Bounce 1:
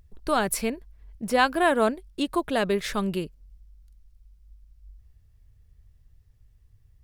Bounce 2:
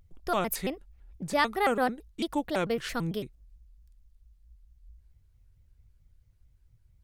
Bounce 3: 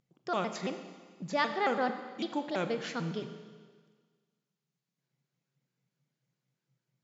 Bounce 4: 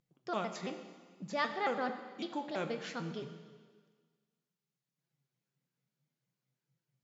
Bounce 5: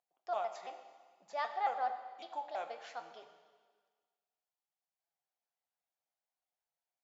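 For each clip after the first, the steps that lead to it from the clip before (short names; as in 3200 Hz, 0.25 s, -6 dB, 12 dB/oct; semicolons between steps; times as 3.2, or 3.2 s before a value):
shaped vibrato square 4.5 Hz, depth 250 cents; gain -4.5 dB
FFT band-pass 120–7500 Hz; Schroeder reverb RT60 1.6 s, combs from 29 ms, DRR 8 dB; gain -4 dB
flange 0.59 Hz, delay 5.7 ms, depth 8.4 ms, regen +59%
resonant high-pass 730 Hz, resonance Q 5.5; gain -8.5 dB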